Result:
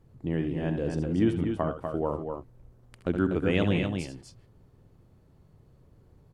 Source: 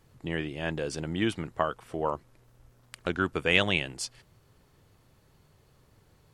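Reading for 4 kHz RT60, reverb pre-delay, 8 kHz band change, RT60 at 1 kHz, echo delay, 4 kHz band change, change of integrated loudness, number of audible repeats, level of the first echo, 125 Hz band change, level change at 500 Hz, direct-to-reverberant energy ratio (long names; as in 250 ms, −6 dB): no reverb audible, no reverb audible, below −10 dB, no reverb audible, 68 ms, −10.0 dB, +1.0 dB, 3, −11.5 dB, +6.0 dB, +2.0 dB, no reverb audible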